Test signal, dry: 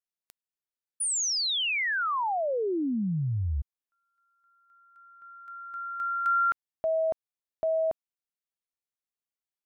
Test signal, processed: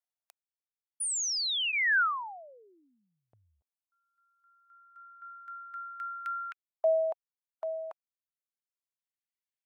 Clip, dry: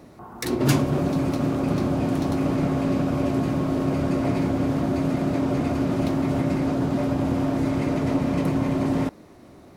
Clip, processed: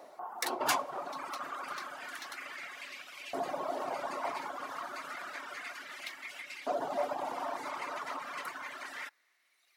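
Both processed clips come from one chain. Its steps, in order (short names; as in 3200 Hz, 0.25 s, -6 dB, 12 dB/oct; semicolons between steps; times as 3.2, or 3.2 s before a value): reverb removal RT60 1.8 s; notch 2500 Hz, Q 25; LFO high-pass saw up 0.3 Hz 640–2600 Hz; gain -3.5 dB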